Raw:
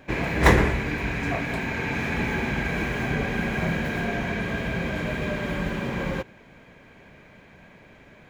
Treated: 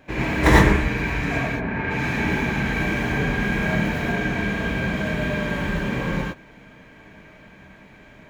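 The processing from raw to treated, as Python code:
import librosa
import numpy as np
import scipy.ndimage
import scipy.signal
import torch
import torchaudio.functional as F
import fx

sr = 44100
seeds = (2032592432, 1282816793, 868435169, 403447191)

y = fx.lowpass(x, sr, hz=fx.line((1.48, 1200.0), (1.89, 3000.0)), slope=12, at=(1.48, 1.89), fade=0.02)
y = fx.rev_gated(y, sr, seeds[0], gate_ms=130, shape='rising', drr_db=-4.0)
y = y * 10.0 ** (-2.5 / 20.0)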